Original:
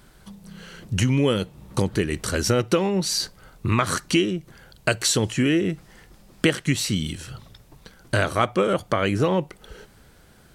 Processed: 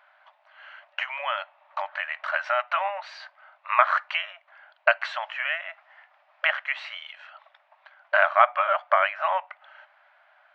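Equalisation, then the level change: LPF 2500 Hz 24 dB/oct; dynamic EQ 1300 Hz, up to +5 dB, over -38 dBFS, Q 0.76; brick-wall FIR high-pass 570 Hz; +1.0 dB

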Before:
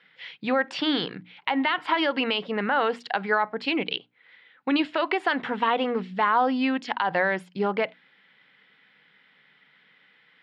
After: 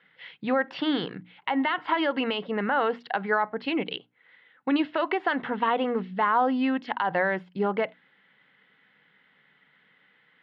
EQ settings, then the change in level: air absorption 260 m; bell 68 Hz +14 dB 0.41 oct; notch 2400 Hz, Q 14; 0.0 dB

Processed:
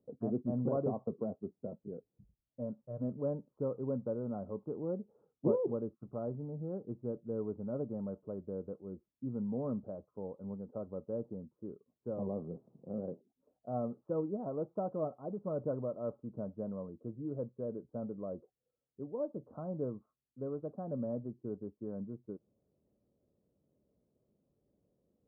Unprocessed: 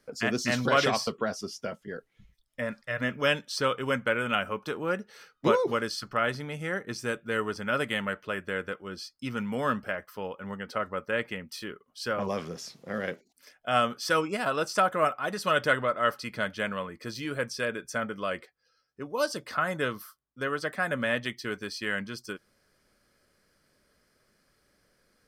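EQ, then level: Gaussian blur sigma 14 samples; HPF 76 Hz; -2.5 dB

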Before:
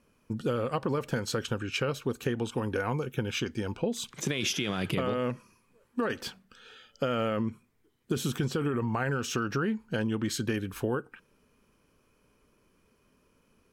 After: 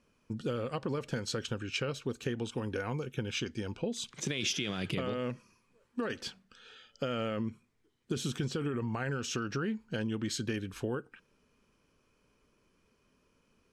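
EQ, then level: high shelf 4200 Hz +11 dB; dynamic EQ 1000 Hz, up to -4 dB, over -47 dBFS, Q 1.1; air absorption 82 m; -4.0 dB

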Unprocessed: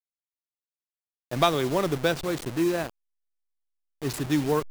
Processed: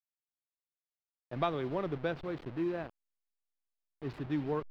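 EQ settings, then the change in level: air absorption 350 m; -8.5 dB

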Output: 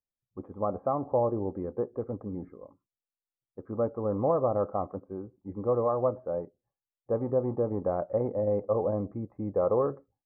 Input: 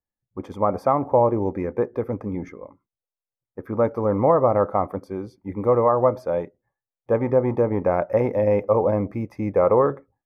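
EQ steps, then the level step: LPF 1200 Hz 24 dB/oct; notch 930 Hz, Q 7.3; -8.0 dB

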